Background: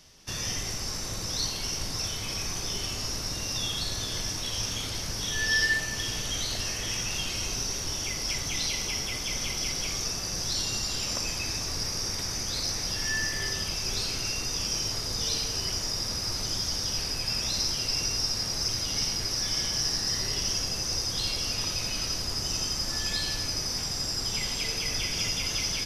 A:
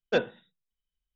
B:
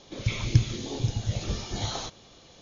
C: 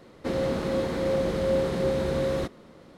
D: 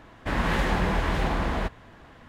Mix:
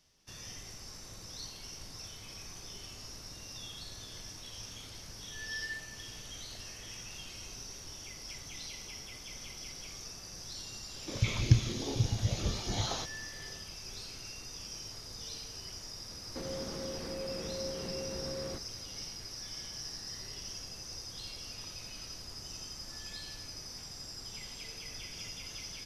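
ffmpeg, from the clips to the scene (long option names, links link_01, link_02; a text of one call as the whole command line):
ffmpeg -i bed.wav -i cue0.wav -i cue1.wav -i cue2.wav -filter_complex "[0:a]volume=-14.5dB[link_01];[3:a]alimiter=limit=-22.5dB:level=0:latency=1:release=171[link_02];[2:a]atrim=end=2.61,asetpts=PTS-STARTPTS,volume=-2.5dB,afade=type=in:duration=0.004:curve=hsin,afade=type=out:start_time=2.606:duration=0.004:curve=hsin,adelay=10960[link_03];[link_02]atrim=end=2.97,asetpts=PTS-STARTPTS,volume=-9.5dB,afade=type=in:duration=0.004:curve=hsin,afade=type=out:start_time=2.966:duration=0.004:curve=hsin,adelay=16110[link_04];[link_01][link_03][link_04]amix=inputs=3:normalize=0" out.wav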